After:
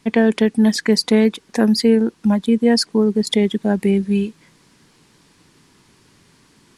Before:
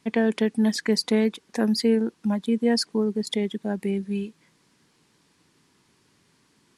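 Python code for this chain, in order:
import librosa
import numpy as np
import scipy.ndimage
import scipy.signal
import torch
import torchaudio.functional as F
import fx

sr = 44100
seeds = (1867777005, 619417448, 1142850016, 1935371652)

p1 = fx.low_shelf(x, sr, hz=61.0, db=10.5)
p2 = fx.rider(p1, sr, range_db=10, speed_s=0.5)
y = p1 + F.gain(torch.from_numpy(p2), 2.0).numpy()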